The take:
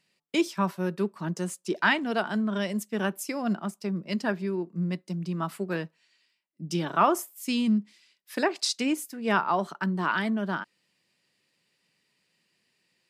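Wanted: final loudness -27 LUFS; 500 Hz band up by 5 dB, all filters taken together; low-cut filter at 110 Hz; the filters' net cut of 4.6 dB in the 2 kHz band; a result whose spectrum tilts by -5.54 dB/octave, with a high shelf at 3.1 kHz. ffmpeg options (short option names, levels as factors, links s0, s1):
-af "highpass=110,equalizer=f=500:t=o:g=7.5,equalizer=f=2000:t=o:g=-4.5,highshelf=f=3100:g=-8,volume=1.06"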